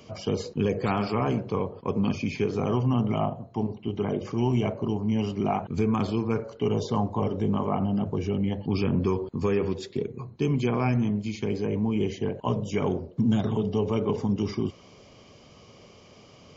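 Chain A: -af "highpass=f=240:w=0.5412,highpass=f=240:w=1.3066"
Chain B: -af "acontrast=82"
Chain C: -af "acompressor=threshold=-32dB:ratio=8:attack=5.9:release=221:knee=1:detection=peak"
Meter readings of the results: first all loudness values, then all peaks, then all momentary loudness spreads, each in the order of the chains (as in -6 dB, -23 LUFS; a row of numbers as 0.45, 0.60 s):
-30.5, -20.5, -37.5 LUFS; -14.5, -7.5, -20.0 dBFS; 5, 5, 5 LU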